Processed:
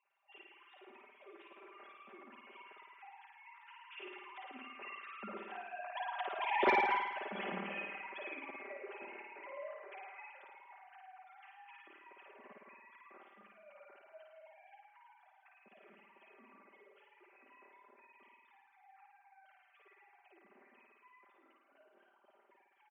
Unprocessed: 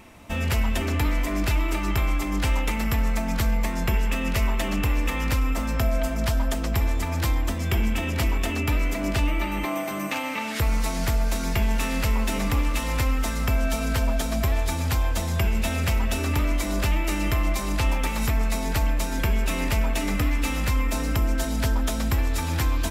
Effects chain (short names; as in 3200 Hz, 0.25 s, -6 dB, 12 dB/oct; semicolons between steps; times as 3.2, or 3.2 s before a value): sine-wave speech; Doppler pass-by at 6.67, 17 m/s, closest 1.7 m; HPF 270 Hz 24 dB/oct; comb 5.1 ms, depth 94%; soft clip -14.5 dBFS, distortion -18 dB; air absorption 180 m; on a send: flutter echo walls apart 9.3 m, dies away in 0.94 s; on the sum: gain -4.5 dB